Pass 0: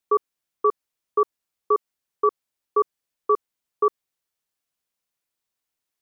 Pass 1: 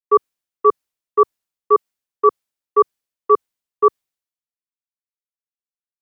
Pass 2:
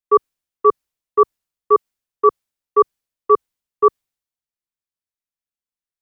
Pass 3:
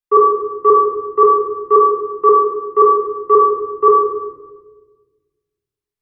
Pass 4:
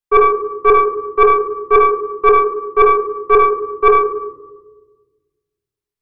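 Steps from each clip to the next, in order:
three-band expander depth 100%; gain +4.5 dB
low shelf 110 Hz +9 dB
shoebox room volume 960 m³, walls mixed, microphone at 3.8 m; gain -4.5 dB
tracing distortion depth 0.089 ms

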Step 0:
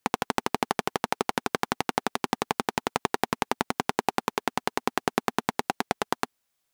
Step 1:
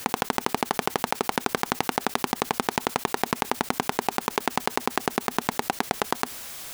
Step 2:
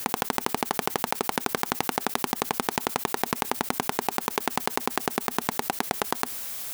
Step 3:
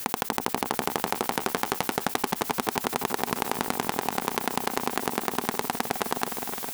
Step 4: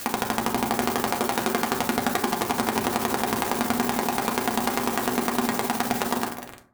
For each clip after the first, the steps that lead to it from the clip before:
fast leveller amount 100%; gain -1 dB
high shelf 9100 Hz +8.5 dB; gain -2 dB
repeats that get brighter 0.259 s, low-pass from 750 Hz, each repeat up 2 oct, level -6 dB; gain -1 dB
ending faded out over 0.63 s; bit-crush 5-bit; reverb RT60 0.50 s, pre-delay 4 ms, DRR 0.5 dB

